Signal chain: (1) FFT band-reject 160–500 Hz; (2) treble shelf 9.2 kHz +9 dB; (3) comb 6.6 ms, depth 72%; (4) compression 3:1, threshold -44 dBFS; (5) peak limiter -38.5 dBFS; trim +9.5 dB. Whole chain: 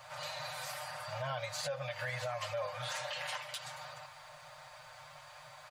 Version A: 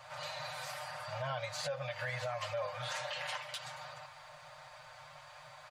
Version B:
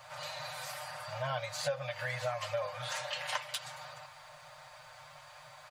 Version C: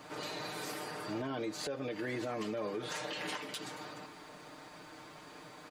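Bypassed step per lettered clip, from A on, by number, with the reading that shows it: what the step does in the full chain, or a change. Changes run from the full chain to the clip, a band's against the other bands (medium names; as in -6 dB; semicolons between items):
2, 8 kHz band -2.5 dB; 5, crest factor change +7.0 dB; 1, 500 Hz band +3.0 dB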